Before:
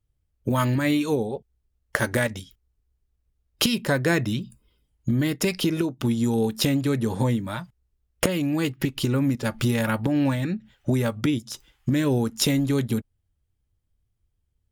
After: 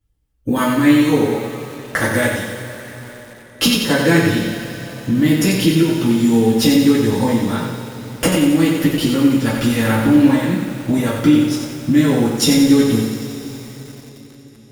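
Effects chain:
coupled-rooms reverb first 0.26 s, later 4.9 s, from −20 dB, DRR −7 dB
feedback echo at a low word length 90 ms, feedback 55%, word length 6 bits, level −5 dB
level −1 dB

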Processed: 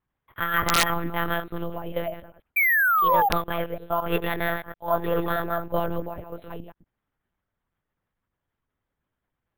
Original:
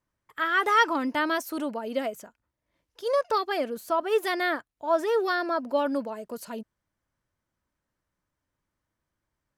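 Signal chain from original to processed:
delay that plays each chunk backwards 105 ms, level −8 dB
one-pitch LPC vocoder at 8 kHz 170 Hz
sound drawn into the spectrogram fall, 0:02.56–0:03.29, 770–2,400 Hz −20 dBFS
bad sample-rate conversion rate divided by 3×, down none, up hold
wrap-around overflow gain 9 dB

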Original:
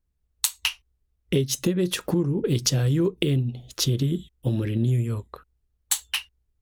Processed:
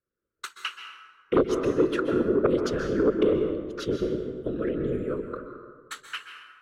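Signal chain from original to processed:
pair of resonant band-passes 760 Hz, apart 1.7 octaves
random phases in short frames
sine wavefolder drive 7 dB, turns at −14.5 dBFS
dense smooth reverb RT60 1.5 s, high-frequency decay 0.55×, pre-delay 115 ms, DRR 5.5 dB

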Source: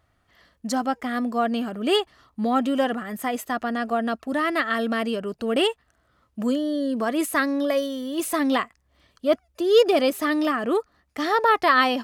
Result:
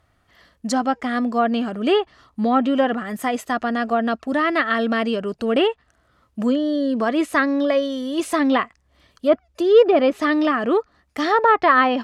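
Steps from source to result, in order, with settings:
treble cut that deepens with the level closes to 2,000 Hz, closed at −15.5 dBFS
level +4 dB

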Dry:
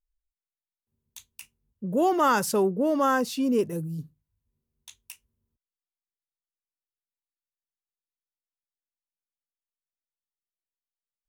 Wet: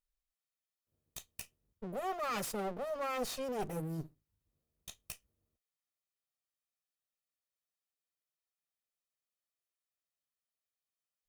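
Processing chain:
lower of the sound and its delayed copy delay 1.6 ms
low-shelf EQ 100 Hz −6.5 dB
reversed playback
downward compressor 6 to 1, threshold −35 dBFS, peak gain reduction 14.5 dB
reversed playback

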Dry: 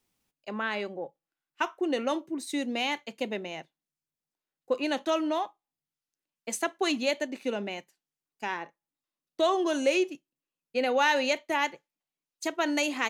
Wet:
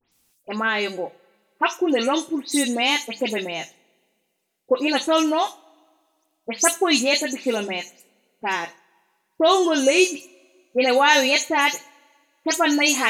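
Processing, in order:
every frequency bin delayed by itself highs late, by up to 117 ms
parametric band 11,000 Hz +8.5 dB 2.4 octaves
mains-hum notches 50/100/150/200 Hz
coupled-rooms reverb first 0.37 s, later 2.1 s, from −22 dB, DRR 13.5 dB
level +8 dB

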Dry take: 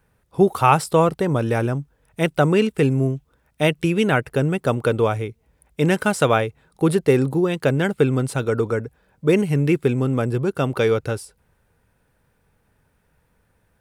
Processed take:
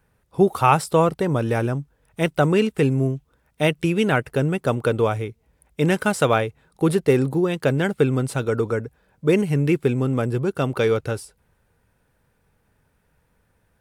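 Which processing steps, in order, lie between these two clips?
level −1 dB
AAC 96 kbit/s 48,000 Hz

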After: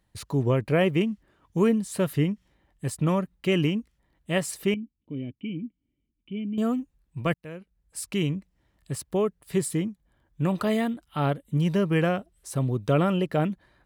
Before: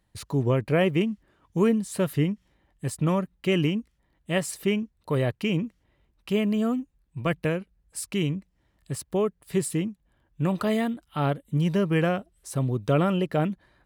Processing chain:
0:04.74–0:06.58: formant resonators in series i
0:07.34–0:08.09: fade in
0:09.58–0:10.41: notch filter 2,700 Hz, Q 9.6

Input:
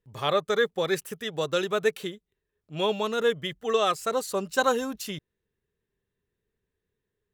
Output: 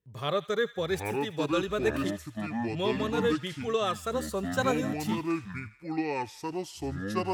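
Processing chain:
high-pass filter 81 Hz
low-shelf EQ 180 Hz +10.5 dB
notch filter 840 Hz, Q 13
delay with pitch and tempo change per echo 688 ms, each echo −6 semitones, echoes 2
on a send: delay with a high-pass on its return 81 ms, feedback 61%, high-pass 1,500 Hz, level −15.5 dB
on the sum: level −5.5 dB

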